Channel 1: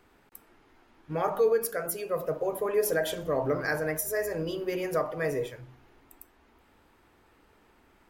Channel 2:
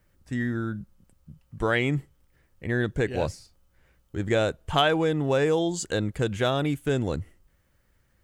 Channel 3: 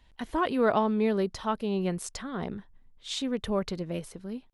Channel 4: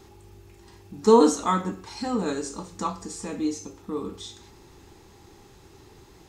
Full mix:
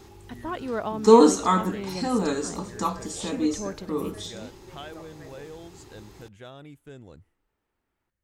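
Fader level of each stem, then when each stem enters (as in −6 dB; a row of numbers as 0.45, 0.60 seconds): −19.5, −19.5, −5.5, +2.0 decibels; 0.00, 0.00, 0.10, 0.00 seconds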